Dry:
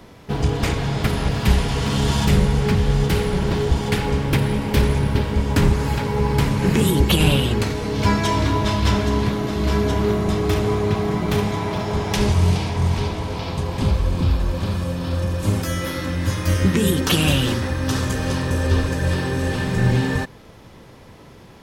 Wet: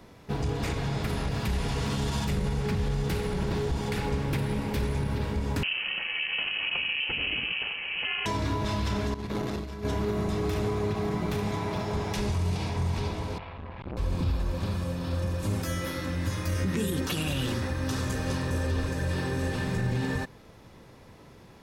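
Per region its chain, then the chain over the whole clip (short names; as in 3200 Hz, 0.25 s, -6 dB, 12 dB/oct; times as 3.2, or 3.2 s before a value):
5.63–8.26 inverted band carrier 2900 Hz + ring modulator 180 Hz
9.14–9.85 negative-ratio compressor -23 dBFS, ratio -0.5 + core saturation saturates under 410 Hz
13.38–13.97 LPF 2700 Hz 24 dB/oct + bell 220 Hz -14.5 dB 2.1 oct + core saturation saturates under 480 Hz
whole clip: notch 3100 Hz, Q 18; limiter -13 dBFS; gain -7 dB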